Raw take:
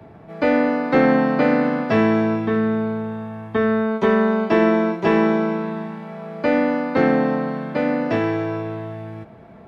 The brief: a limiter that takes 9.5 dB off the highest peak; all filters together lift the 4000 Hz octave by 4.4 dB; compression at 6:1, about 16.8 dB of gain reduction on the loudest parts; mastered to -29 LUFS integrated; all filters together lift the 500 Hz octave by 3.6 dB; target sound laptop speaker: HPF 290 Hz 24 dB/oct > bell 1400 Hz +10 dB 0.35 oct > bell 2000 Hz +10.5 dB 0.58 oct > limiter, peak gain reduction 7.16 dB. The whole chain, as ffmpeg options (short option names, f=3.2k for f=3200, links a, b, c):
-af "equalizer=f=500:t=o:g=4,equalizer=f=4k:t=o:g=3.5,acompressor=threshold=-29dB:ratio=6,alimiter=level_in=2dB:limit=-24dB:level=0:latency=1,volume=-2dB,highpass=f=290:w=0.5412,highpass=f=290:w=1.3066,equalizer=f=1.4k:t=o:w=0.35:g=10,equalizer=f=2k:t=o:w=0.58:g=10.5,volume=8dB,alimiter=limit=-20.5dB:level=0:latency=1"